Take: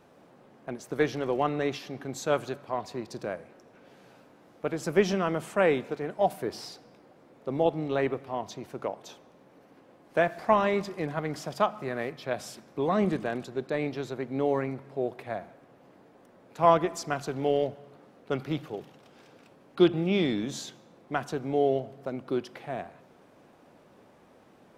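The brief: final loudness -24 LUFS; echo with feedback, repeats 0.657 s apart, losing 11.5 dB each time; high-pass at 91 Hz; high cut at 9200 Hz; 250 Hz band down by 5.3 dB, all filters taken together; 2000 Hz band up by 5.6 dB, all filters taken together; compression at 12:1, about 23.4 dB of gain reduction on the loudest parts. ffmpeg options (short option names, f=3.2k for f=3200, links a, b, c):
-af "highpass=91,lowpass=9.2k,equalizer=f=250:t=o:g=-8,equalizer=f=2k:t=o:g=7,acompressor=threshold=-39dB:ratio=12,aecho=1:1:657|1314|1971:0.266|0.0718|0.0194,volume=21dB"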